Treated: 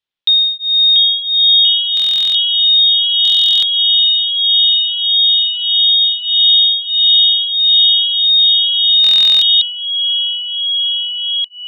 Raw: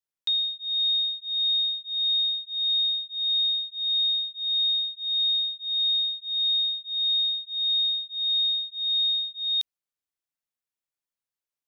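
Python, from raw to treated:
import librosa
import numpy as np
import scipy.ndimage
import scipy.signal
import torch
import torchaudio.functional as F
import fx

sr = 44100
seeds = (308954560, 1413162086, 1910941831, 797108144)

y = fx.spec_clip(x, sr, under_db=25, at=(3.82, 6.0), fade=0.02)
y = fx.lowpass_res(y, sr, hz=3400.0, q=3.1)
y = fx.echo_pitch(y, sr, ms=653, semitones=-2, count=2, db_per_echo=-6.0)
y = fx.buffer_glitch(y, sr, at_s=(1.95, 3.23, 9.02), block=1024, repeats=16)
y = F.gain(torch.from_numpy(y), 6.0).numpy()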